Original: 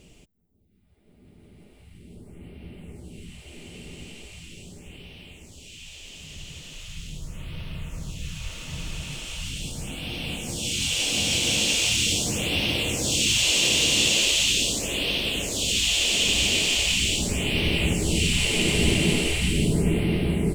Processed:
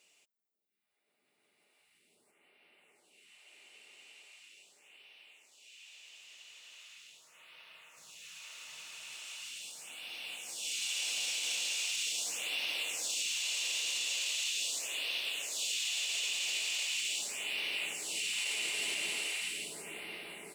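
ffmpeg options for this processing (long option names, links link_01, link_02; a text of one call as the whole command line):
ffmpeg -i in.wav -filter_complex "[0:a]asettb=1/sr,asplit=3[link_01][link_02][link_03];[link_01]atrim=end=2.314[link_04];[link_02]atrim=start=2.31:end=7.97,asetpts=PTS-STARTPTS,afade=type=in:duration=0.004:curve=qsin,afade=type=out:start_time=5.656:duration=0.004:curve=qsin,bass=frequency=250:gain=-8,treble=frequency=4000:gain=-5[link_05];[link_03]atrim=start=7.966[link_06];[link_04][link_05]acrossfade=duration=0.004:curve1=hsin:curve2=qsin[link_07];[link_07][link_06]acrossfade=duration=0.004:curve1=qsin:curve2=hsin,highpass=1000,bandreject=frequency=3200:width=14,alimiter=limit=-18dB:level=0:latency=1:release=16,volume=-8dB" out.wav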